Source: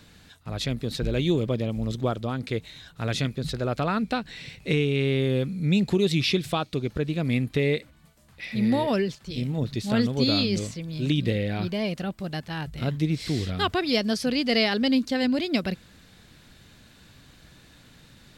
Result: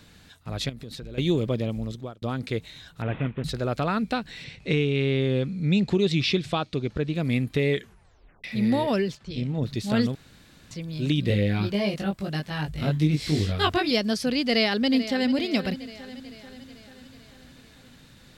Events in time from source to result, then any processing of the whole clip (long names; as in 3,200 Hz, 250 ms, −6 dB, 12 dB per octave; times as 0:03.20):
0:00.69–0:01.18: downward compressor 12 to 1, threshold −34 dBFS
0:01.69–0:02.22: fade out
0:03.02–0:03.44: variable-slope delta modulation 16 kbit/s
0:04.44–0:07.15: low-pass filter 6,300 Hz
0:07.70: tape stop 0.74 s
0:09.17–0:09.63: high-frequency loss of the air 87 metres
0:10.15–0:10.71: fill with room tone
0:11.28–0:13.91: double-tracking delay 20 ms −2 dB
0:14.43–0:15.31: delay throw 440 ms, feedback 60%, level −13 dB